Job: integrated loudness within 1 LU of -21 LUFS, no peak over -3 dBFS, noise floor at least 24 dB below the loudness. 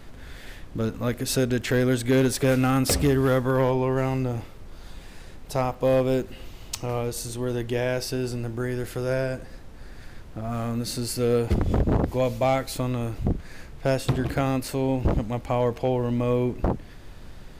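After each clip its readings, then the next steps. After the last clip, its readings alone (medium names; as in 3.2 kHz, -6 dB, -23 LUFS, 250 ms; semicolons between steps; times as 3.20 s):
clipped samples 0.5%; clipping level -14.5 dBFS; noise floor -43 dBFS; noise floor target -50 dBFS; loudness -25.5 LUFS; peak level -14.5 dBFS; loudness target -21.0 LUFS
-> clip repair -14.5 dBFS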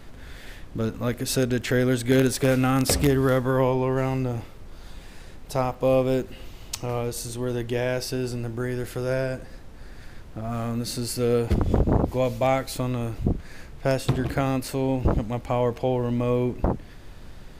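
clipped samples 0.0%; noise floor -43 dBFS; noise floor target -49 dBFS
-> noise print and reduce 6 dB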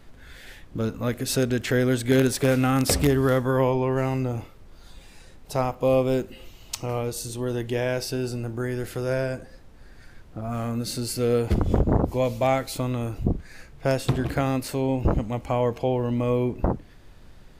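noise floor -49 dBFS; loudness -25.0 LUFS; peak level -5.5 dBFS; loudness target -21.0 LUFS
-> trim +4 dB; peak limiter -3 dBFS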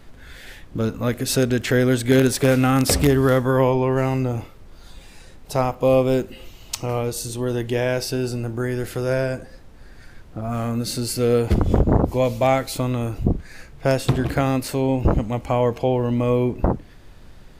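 loudness -21.0 LUFS; peak level -3.0 dBFS; noise floor -45 dBFS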